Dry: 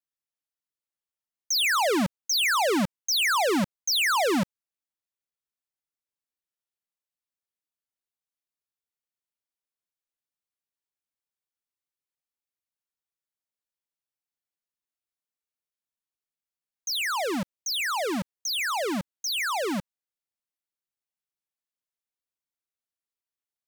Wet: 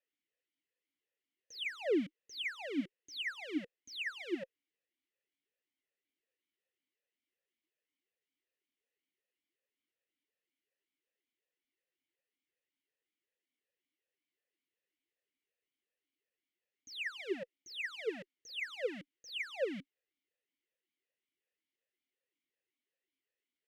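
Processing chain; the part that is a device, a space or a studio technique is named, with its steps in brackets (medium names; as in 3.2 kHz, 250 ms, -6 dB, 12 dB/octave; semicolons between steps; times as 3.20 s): talk box (valve stage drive 45 dB, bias 0.3; talking filter e-i 2.7 Hz); trim +18 dB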